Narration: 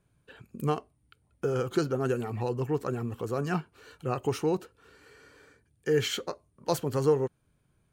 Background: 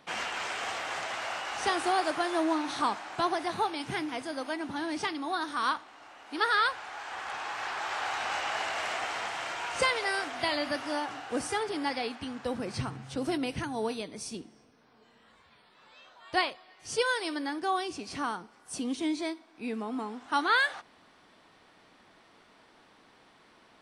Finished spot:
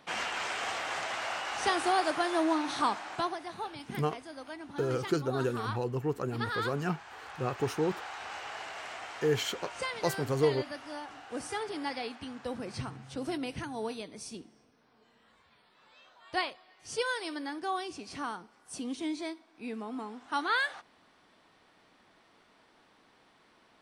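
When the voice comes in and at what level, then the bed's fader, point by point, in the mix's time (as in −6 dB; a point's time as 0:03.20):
3.35 s, −2.5 dB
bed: 0:03.14 0 dB
0:03.39 −9 dB
0:11.02 −9 dB
0:11.63 −4 dB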